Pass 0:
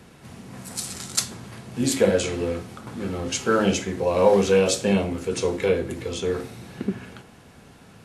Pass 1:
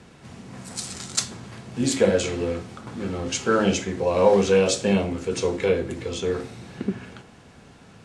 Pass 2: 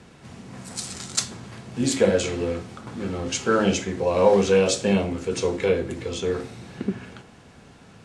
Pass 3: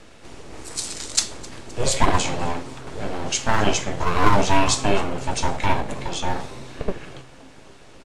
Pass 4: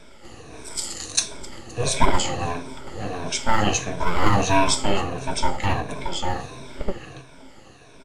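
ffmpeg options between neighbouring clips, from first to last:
-af "lowpass=f=8.9k:w=0.5412,lowpass=f=8.9k:w=1.3066"
-af anull
-filter_complex "[0:a]acrossover=split=1500[a][b];[a]aeval=exprs='abs(val(0))':c=same[c];[c][b]amix=inputs=2:normalize=0,asplit=5[d][e][f][g][h];[e]adelay=260,afreqshift=130,volume=-22dB[i];[f]adelay=520,afreqshift=260,volume=-27.2dB[j];[g]adelay=780,afreqshift=390,volume=-32.4dB[k];[h]adelay=1040,afreqshift=520,volume=-37.6dB[l];[d][i][j][k][l]amix=inputs=5:normalize=0,volume=4dB"
-af "afftfilt=real='re*pow(10,12/40*sin(2*PI*(1.6*log(max(b,1)*sr/1024/100)/log(2)-(-1.5)*(pts-256)/sr)))':imag='im*pow(10,12/40*sin(2*PI*(1.6*log(max(b,1)*sr/1024/100)/log(2)-(-1.5)*(pts-256)/sr)))':win_size=1024:overlap=0.75,volume=-2.5dB"

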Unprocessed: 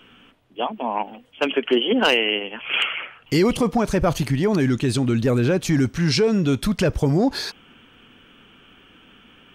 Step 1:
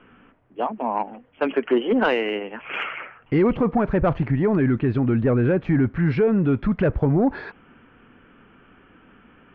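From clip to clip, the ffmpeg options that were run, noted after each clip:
-af "lowpass=f=2k:w=0.5412,lowpass=f=2k:w=1.3066,acontrast=87,volume=-6.5dB"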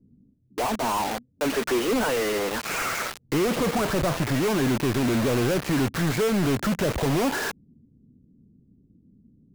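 -filter_complex "[0:a]asplit=2[a][b];[b]highpass=f=720:p=1,volume=31dB,asoftclip=type=tanh:threshold=-10.5dB[c];[a][c]amix=inputs=2:normalize=0,lowpass=f=1k:p=1,volume=-6dB,acrossover=split=190[d][e];[e]acrusher=bits=3:mix=0:aa=0.000001[f];[d][f]amix=inputs=2:normalize=0,volume=-6.5dB"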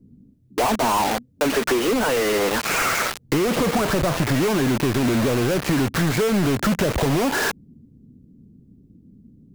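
-af "acompressor=threshold=-24dB:ratio=6,volume=7.5dB"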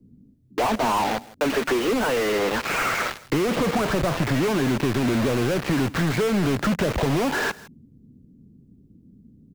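-filter_complex "[0:a]aecho=1:1:161:0.0891,acrossover=split=130|3100[a][b][c];[c]asoftclip=type=hard:threshold=-31dB[d];[a][b][d]amix=inputs=3:normalize=0,volume=-2dB"

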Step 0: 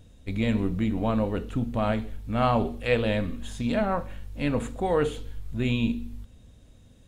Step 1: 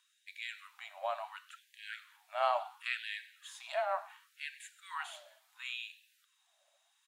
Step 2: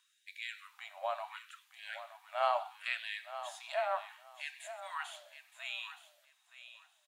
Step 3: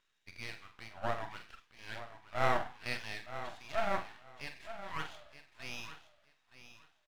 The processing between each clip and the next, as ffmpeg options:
-filter_complex "[0:a]afreqshift=30,asplit=4[a][b][c][d];[b]adelay=101,afreqshift=56,volume=-20.5dB[e];[c]adelay=202,afreqshift=112,volume=-29.1dB[f];[d]adelay=303,afreqshift=168,volume=-37.8dB[g];[a][e][f][g]amix=inputs=4:normalize=0,afftfilt=real='re*gte(b*sr/1024,540*pow(1600/540,0.5+0.5*sin(2*PI*0.71*pts/sr)))':imag='im*gte(b*sr/1024,540*pow(1600/540,0.5+0.5*sin(2*PI*0.71*pts/sr)))':win_size=1024:overlap=0.75,volume=-6dB"
-af "aecho=1:1:919|1838:0.237|0.0451"
-filter_complex "[0:a]lowpass=2.6k,aeval=exprs='max(val(0),0)':c=same,asplit=2[a][b];[b]adelay=45,volume=-8.5dB[c];[a][c]amix=inputs=2:normalize=0,volume=4.5dB"

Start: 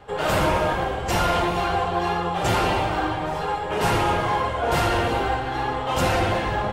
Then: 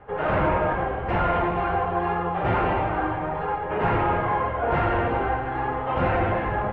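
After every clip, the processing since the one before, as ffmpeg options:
-af "lowpass=f=2.2k:w=0.5412,lowpass=f=2.2k:w=1.3066,volume=-1dB"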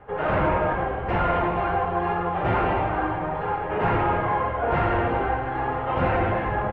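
-af "aecho=1:1:971:0.188"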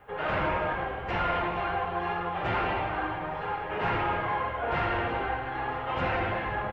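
-af "crystalizer=i=7:c=0,volume=-8.5dB"

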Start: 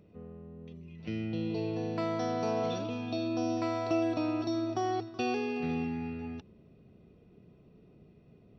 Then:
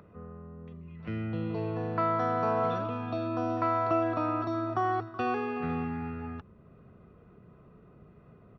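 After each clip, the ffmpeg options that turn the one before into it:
-filter_complex "[0:a]firequalizer=gain_entry='entry(100,0);entry(290,-7);entry(540,-2);entry(800,-1);entry(1200,10);entry(2400,-7);entry(5600,-19)':delay=0.05:min_phase=1,acrossover=split=210[a][b];[b]acompressor=mode=upward:threshold=-58dB:ratio=2.5[c];[a][c]amix=inputs=2:normalize=0,volume=4.5dB"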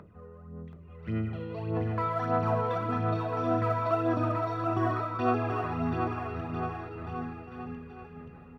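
-filter_complex "[0:a]aphaser=in_gain=1:out_gain=1:delay=2.2:decay=0.62:speed=1.7:type=sinusoidal,asplit=2[a][b];[b]aecho=0:1:730|1350|1878|2326|2707:0.631|0.398|0.251|0.158|0.1[c];[a][c]amix=inputs=2:normalize=0,volume=-4dB"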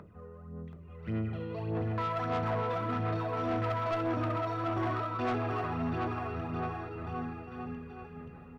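-af "asoftclip=type=tanh:threshold=-27dB"

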